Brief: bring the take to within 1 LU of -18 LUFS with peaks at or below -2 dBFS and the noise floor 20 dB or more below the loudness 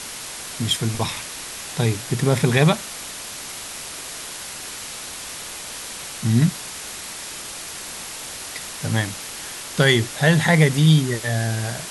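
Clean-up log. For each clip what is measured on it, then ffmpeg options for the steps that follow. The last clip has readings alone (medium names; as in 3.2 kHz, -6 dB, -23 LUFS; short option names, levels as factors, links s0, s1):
noise floor -34 dBFS; noise floor target -43 dBFS; loudness -22.5 LUFS; peak level -2.5 dBFS; loudness target -18.0 LUFS
-> -af "afftdn=nr=9:nf=-34"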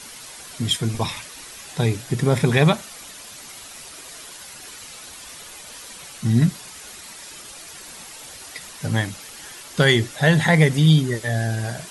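noise floor -40 dBFS; loudness -20.0 LUFS; peak level -2.5 dBFS; loudness target -18.0 LUFS
-> -af "volume=1.26,alimiter=limit=0.794:level=0:latency=1"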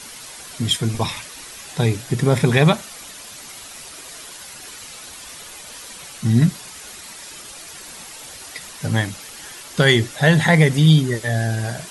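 loudness -18.0 LUFS; peak level -2.0 dBFS; noise floor -38 dBFS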